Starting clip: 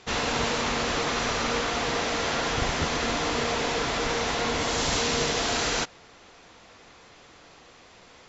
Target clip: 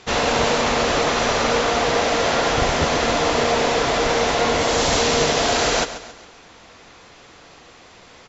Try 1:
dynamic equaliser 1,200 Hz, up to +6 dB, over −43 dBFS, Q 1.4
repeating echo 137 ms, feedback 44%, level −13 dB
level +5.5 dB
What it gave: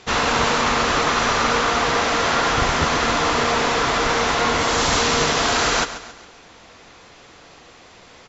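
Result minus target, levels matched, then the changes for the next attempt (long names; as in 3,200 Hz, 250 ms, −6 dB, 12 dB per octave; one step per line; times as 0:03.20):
500 Hz band −4.0 dB
change: dynamic equaliser 600 Hz, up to +6 dB, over −43 dBFS, Q 1.4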